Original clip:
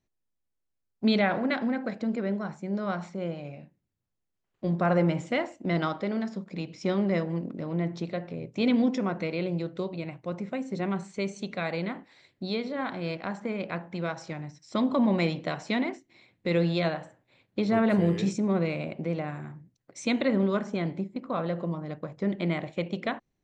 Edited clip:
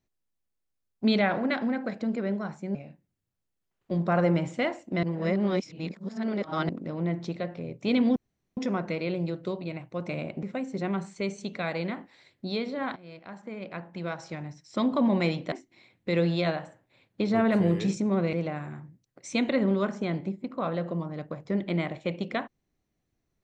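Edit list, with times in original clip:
2.75–3.48 cut
5.76–7.42 reverse
8.89 insert room tone 0.41 s
12.94–14.41 fade in, from -18 dB
15.5–15.9 cut
18.71–19.05 move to 10.41

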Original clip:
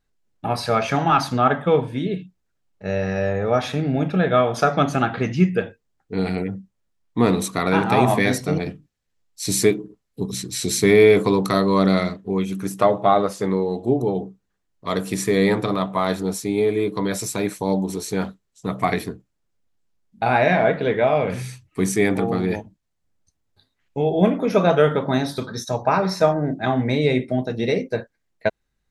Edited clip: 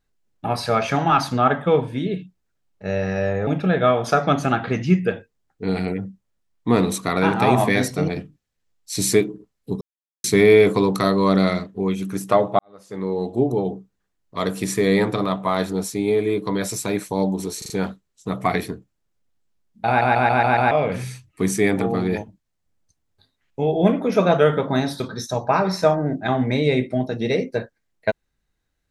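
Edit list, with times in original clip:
3.47–3.97 cut
10.31–10.74 mute
13.09–13.69 fade in quadratic
18.08 stutter 0.04 s, 4 plays
20.25 stutter in place 0.14 s, 6 plays

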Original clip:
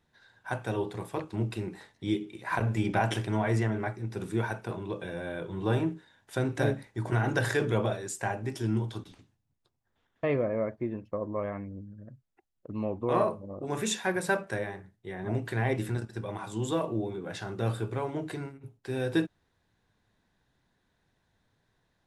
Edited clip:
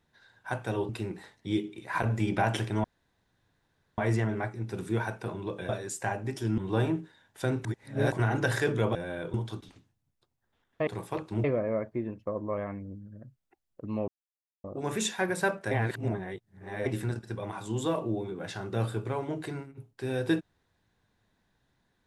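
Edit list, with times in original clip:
0.89–1.46 move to 10.3
3.41 insert room tone 1.14 s
5.12–5.51 swap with 7.88–8.77
6.58–7.05 reverse
12.94–13.5 mute
14.57–15.72 reverse

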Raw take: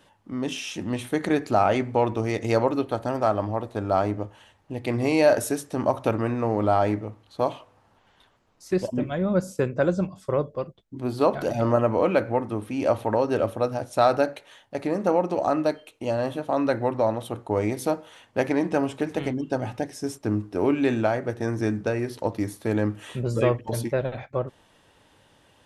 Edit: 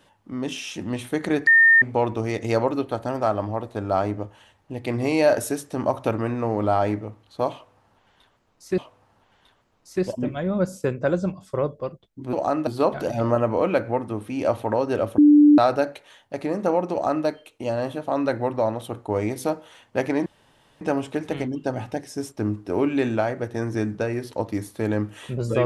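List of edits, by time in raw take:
1.47–1.82 bleep 1820 Hz -10.5 dBFS
7.53–8.78 loop, 2 plays
13.59–13.99 bleep 295 Hz -9 dBFS
15.33–15.67 copy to 11.08
18.67 insert room tone 0.55 s

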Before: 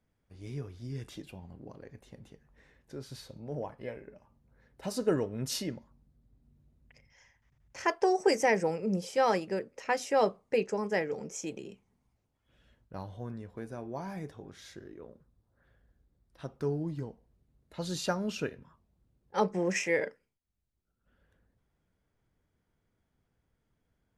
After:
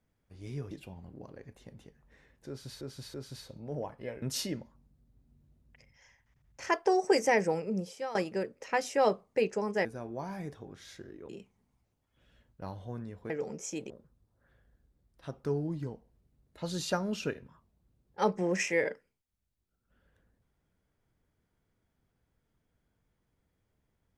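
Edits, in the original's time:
0.71–1.17 cut
2.94–3.27 loop, 3 plays
4.02–5.38 cut
8.75–9.31 fade out, to -17 dB
11.01–11.61 swap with 13.62–15.06

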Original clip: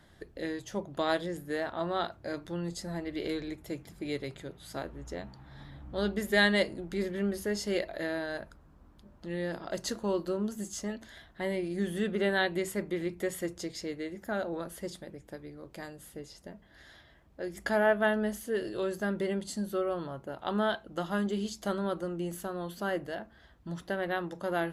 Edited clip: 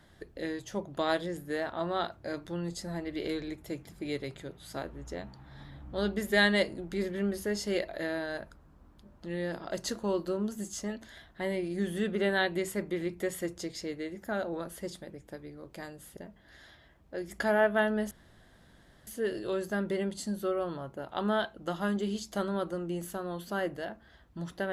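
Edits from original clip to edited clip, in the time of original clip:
16.17–16.43 cut
18.37 insert room tone 0.96 s

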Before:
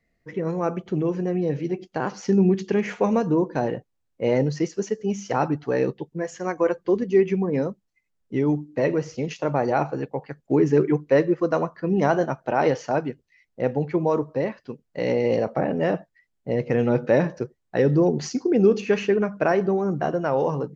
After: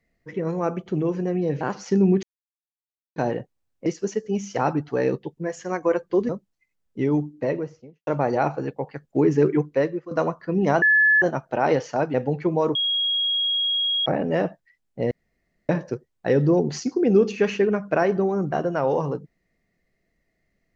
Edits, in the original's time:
1.61–1.98 cut
2.6–3.53 mute
4.23–4.61 cut
7.04–7.64 cut
8.56–9.42 studio fade out
10.96–11.46 fade out, to -16.5 dB
12.17 add tone 1720 Hz -13.5 dBFS 0.40 s
13.09–13.63 cut
14.24–15.55 bleep 3290 Hz -20 dBFS
16.6–17.18 room tone

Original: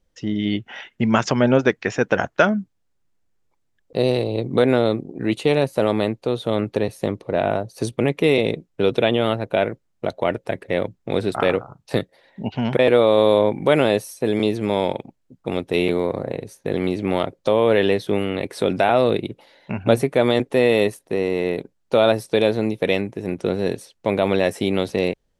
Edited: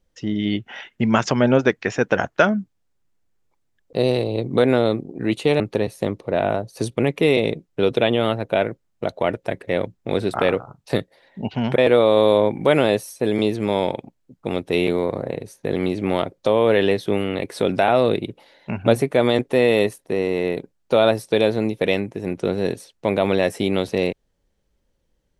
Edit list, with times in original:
5.6–6.61 cut

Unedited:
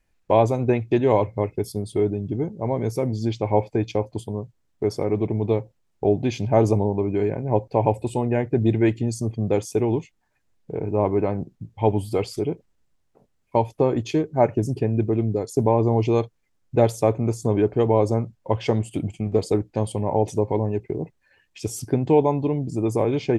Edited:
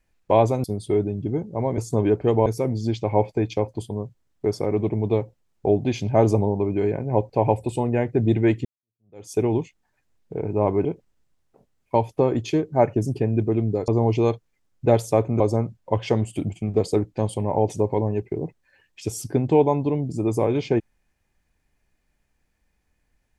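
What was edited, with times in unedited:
0.64–1.7 cut
9.03–9.7 fade in exponential
11.23–12.46 cut
15.49–15.78 cut
17.3–17.98 move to 2.84

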